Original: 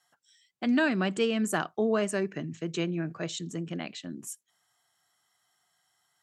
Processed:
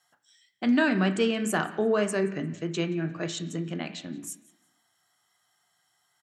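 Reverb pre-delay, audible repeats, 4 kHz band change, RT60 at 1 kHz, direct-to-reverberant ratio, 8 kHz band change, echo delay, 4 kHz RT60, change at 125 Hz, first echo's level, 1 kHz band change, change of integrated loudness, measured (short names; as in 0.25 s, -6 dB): 17 ms, 2, +1.5 dB, 1.1 s, 7.0 dB, +1.5 dB, 0.176 s, 1.0 s, +3.0 dB, -22.5 dB, +2.5 dB, +2.0 dB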